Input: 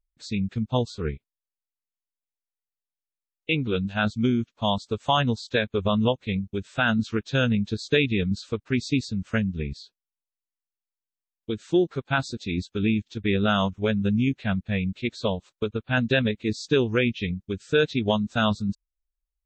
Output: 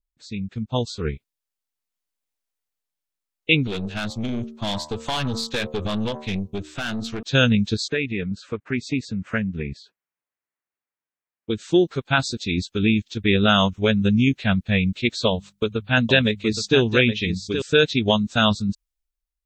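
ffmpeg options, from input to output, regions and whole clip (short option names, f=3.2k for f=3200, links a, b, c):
-filter_complex "[0:a]asettb=1/sr,asplit=3[a][b][c];[a]atrim=end=3.674[d];[b]atrim=start=3.67:end=7.23,asetpts=PTS-STARTPTS,afade=t=in:d=0.004:c=qsin,afade=t=out:st=3.556:d=0.004:c=qsin,bandreject=f=76.03:t=h:w=4,bandreject=f=152.06:t=h:w=4,bandreject=f=228.09:t=h:w=4,bandreject=f=304.12:t=h:w=4,bandreject=f=380.15:t=h:w=4,bandreject=f=456.18:t=h:w=4,bandreject=f=532.21:t=h:w=4,bandreject=f=608.24:t=h:w=4,bandreject=f=684.27:t=h:w=4,bandreject=f=760.3:t=h:w=4,bandreject=f=836.33:t=h:w=4,bandreject=f=912.36:t=h:w=4,bandreject=f=988.39:t=h:w=4,bandreject=f=1.06442k:t=h:w=4,bandreject=f=1.14045k:t=h:w=4,bandreject=f=1.21648k:t=h:w=4,bandreject=f=1.29251k:t=h:w=4,acompressor=threshold=-24dB:ratio=8:attack=3.2:release=140:knee=1:detection=peak,aeval=exprs='(tanh(25.1*val(0)+0.55)-tanh(0.55))/25.1':c=same[e];[c]atrim=start=7.226[f];[d][e]acrossfade=d=0.004:c1=hsin:c2=qsin[g];[g][f]acrossfade=d=0.004:c1=qsin:c2=hsin,asettb=1/sr,asplit=3[h][i][j];[h]atrim=end=7.884[k];[i]atrim=start=7.88:end=11.5,asetpts=PTS-STARTPTS,afade=t=in:d=0.004:c=qsin,afade=t=out:st=3.616:d=0.004:c=qsin,highpass=f=130:p=1,highshelf=f=2.8k:t=q:w=1.5:g=-11,acompressor=threshold=-39dB:ratio=1.5:attack=3.2:release=140:knee=1:detection=peak[l];[j]atrim=start=11.496[m];[k][l]acrossfade=d=0.004:c1=hsin:c2=qsin[n];[n][m]acrossfade=d=0.004:c1=qsin:c2=hsin,asettb=1/sr,asplit=3[o][p][q];[o]atrim=end=15.274[r];[p]atrim=start=15.27:end=17.62,asetpts=PTS-STARTPTS,afade=t=in:d=0.004:c=qsin,afade=t=out:st=2.346:d=0.004:c=qsin,bandreject=f=50:t=h:w=6,bandreject=f=100:t=h:w=6,bandreject=f=150:t=h:w=6,bandreject=f=200:t=h:w=6,aecho=1:1:820:0.355,atrim=end_sample=103635[s];[q]atrim=start=17.616[t];[r][s]acrossfade=d=0.004:c1=hsin:c2=qsin[u];[u][t]acrossfade=d=0.004:c1=qsin:c2=hsin,dynaudnorm=f=240:g=7:m=11.5dB,adynamicequalizer=threshold=0.0224:dfrequency=2200:dqfactor=0.7:tfrequency=2200:tqfactor=0.7:attack=5:release=100:ratio=0.375:range=3:mode=boostabove:tftype=highshelf,volume=-3.5dB"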